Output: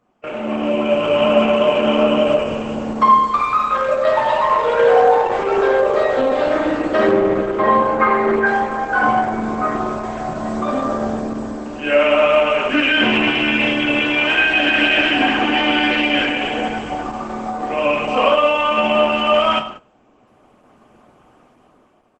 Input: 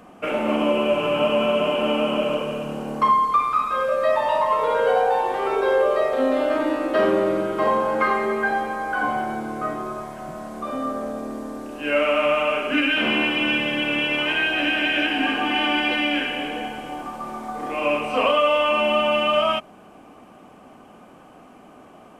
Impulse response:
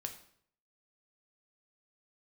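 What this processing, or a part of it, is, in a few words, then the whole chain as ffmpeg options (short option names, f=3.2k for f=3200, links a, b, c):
speakerphone in a meeting room: -filter_complex "[0:a]asettb=1/sr,asplit=3[a][b][c];[a]atrim=end=7.114[d];[b]atrim=start=7.11:end=8.46,asetpts=PTS-STARTPTS,afade=t=in:d=0.004:c=qsin,afade=t=out:st=1.346:d=0.004:c=qsin,acrossover=split=3100[e][f];[f]acompressor=threshold=-55dB:ratio=4:attack=1:release=60[g];[e][g]amix=inputs=2:normalize=0[h];[c]atrim=start=8.456[i];[d][h]acrossfade=d=0.004:c1=hsin:c2=qsin[j];[j][i]acrossfade=d=0.004:c1=qsin:c2=hsin[k];[1:a]atrim=start_sample=2205[l];[k][l]afir=irnorm=-1:irlink=0,asplit=2[m][n];[n]adelay=180,highpass=300,lowpass=3.4k,asoftclip=type=hard:threshold=-18.5dB,volume=-23dB[o];[m][o]amix=inputs=2:normalize=0,dynaudnorm=f=150:g=11:m=14dB,agate=range=-14dB:threshold=-31dB:ratio=16:detection=peak,volume=-1dB" -ar 48000 -c:a libopus -b:a 12k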